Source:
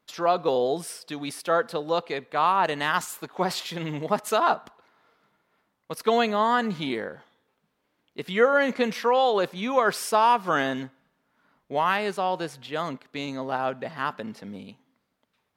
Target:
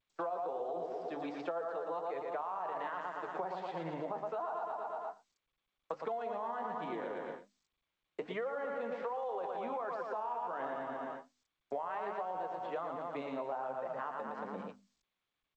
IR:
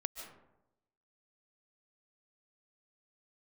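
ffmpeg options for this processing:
-filter_complex "[0:a]equalizer=f=710:t=o:w=1.7:g=10,asplit=2[a][b];[b]aecho=0:1:115|230|345|460|575|690|805|920:0.501|0.296|0.174|0.103|0.0607|0.0358|0.0211|0.0125[c];[a][c]amix=inputs=2:normalize=0,agate=range=-54dB:threshold=-35dB:ratio=16:detection=peak,bandreject=f=50:t=h:w=6,bandreject=f=100:t=h:w=6,bandreject=f=150:t=h:w=6,bandreject=f=200:t=h:w=6,bandreject=f=250:t=h:w=6,bandreject=f=300:t=h:w=6,acrossover=split=220|1100[d][e][f];[e]crystalizer=i=9.5:c=0[g];[d][g][f]amix=inputs=3:normalize=0,alimiter=limit=-9dB:level=0:latency=1:release=15,deesser=0.55,flanger=delay=5.7:depth=7.2:regen=48:speed=1.3:shape=sinusoidal,acompressor=threshold=-33dB:ratio=10,highpass=150,lowpass=2.2k,volume=-2.5dB" -ar 16000 -c:a g722

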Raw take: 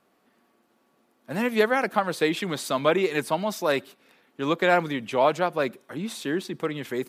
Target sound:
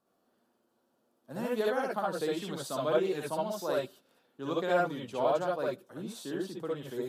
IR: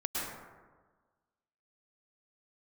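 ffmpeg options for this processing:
-filter_complex "[0:a]equalizer=f=2.2k:w=1.8:g=-13[a];[1:a]atrim=start_sample=2205,atrim=end_sample=6615,asetrate=83790,aresample=44100[b];[a][b]afir=irnorm=-1:irlink=0,volume=-3.5dB"

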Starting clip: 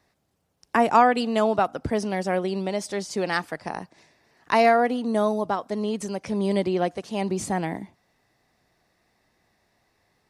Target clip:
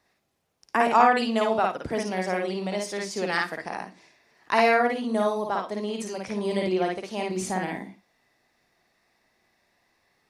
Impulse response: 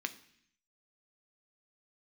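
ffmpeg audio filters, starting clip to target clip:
-filter_complex "[0:a]equalizer=f=95:w=0.37:g=-6,asplit=2[a][b];[1:a]atrim=start_sample=2205,afade=t=out:st=0.15:d=0.01,atrim=end_sample=7056,adelay=54[c];[b][c]afir=irnorm=-1:irlink=0,volume=-1.5dB[d];[a][d]amix=inputs=2:normalize=0,volume=-2dB"

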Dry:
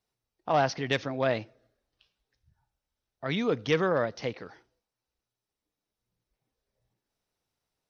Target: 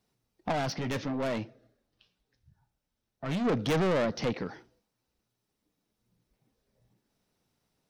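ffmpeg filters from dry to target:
-filter_complex "[0:a]equalizer=f=200:w=0.89:g=9,asoftclip=type=tanh:threshold=-29dB,asplit=3[a][b][c];[a]afade=t=out:st=0.51:d=0.02[d];[b]flanger=delay=6.5:depth=2.4:regen=-67:speed=1.8:shape=sinusoidal,afade=t=in:st=0.51:d=0.02,afade=t=out:st=3.44:d=0.02[e];[c]afade=t=in:st=3.44:d=0.02[f];[d][e][f]amix=inputs=3:normalize=0,volume=5dB"

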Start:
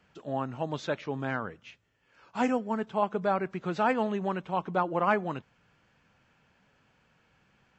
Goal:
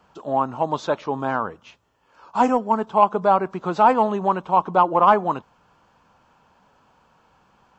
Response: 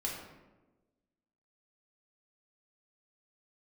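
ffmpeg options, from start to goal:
-af "equalizer=f=125:t=o:w=1:g=-5,equalizer=f=1k:t=o:w=1:g=11,equalizer=f=2k:t=o:w=1:g=-10,acontrast=72"

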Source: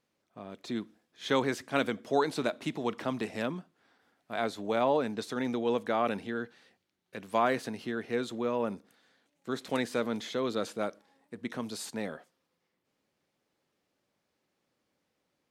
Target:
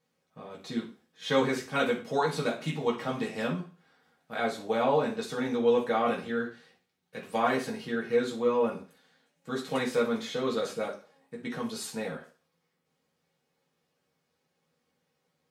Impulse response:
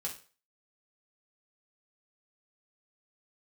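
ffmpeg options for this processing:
-filter_complex "[1:a]atrim=start_sample=2205,asetrate=42777,aresample=44100[a];[0:a][a]afir=irnorm=-1:irlink=0,volume=1.5dB"

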